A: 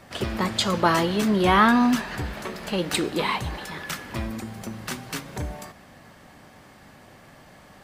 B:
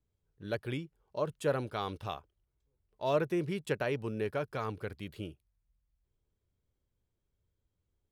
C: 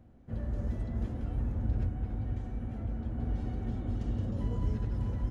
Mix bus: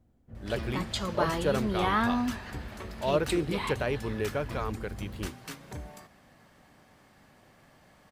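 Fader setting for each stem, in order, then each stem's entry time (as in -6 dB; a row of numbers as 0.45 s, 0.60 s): -9.5 dB, +2.5 dB, -9.0 dB; 0.35 s, 0.00 s, 0.00 s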